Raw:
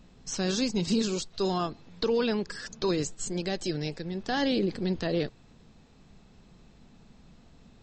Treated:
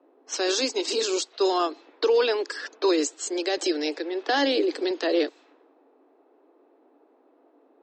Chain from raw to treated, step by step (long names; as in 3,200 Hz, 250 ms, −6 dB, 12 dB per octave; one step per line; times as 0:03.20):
Butterworth high-pass 280 Hz 96 dB per octave
low-pass that shuts in the quiet parts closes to 720 Hz, open at −30 dBFS
0:03.57–0:04.91: multiband upward and downward compressor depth 40%
level +6.5 dB